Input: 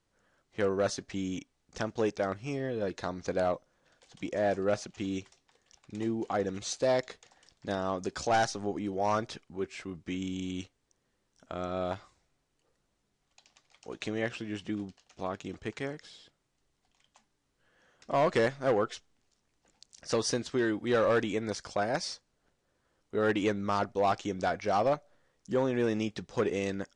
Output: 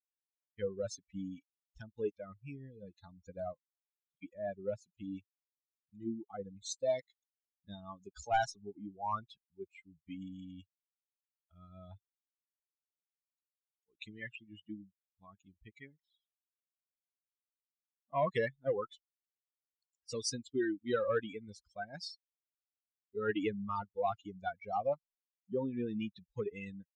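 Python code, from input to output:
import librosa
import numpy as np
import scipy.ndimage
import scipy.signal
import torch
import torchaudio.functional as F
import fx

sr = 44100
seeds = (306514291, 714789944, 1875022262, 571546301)

y = fx.bin_expand(x, sr, power=3.0)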